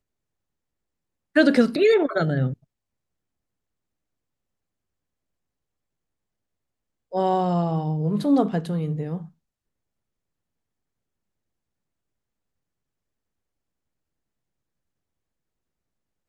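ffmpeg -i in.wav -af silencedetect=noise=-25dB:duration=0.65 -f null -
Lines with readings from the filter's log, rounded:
silence_start: 0.00
silence_end: 1.36 | silence_duration: 1.36
silence_start: 2.53
silence_end: 7.14 | silence_duration: 4.61
silence_start: 9.17
silence_end: 16.29 | silence_duration: 7.12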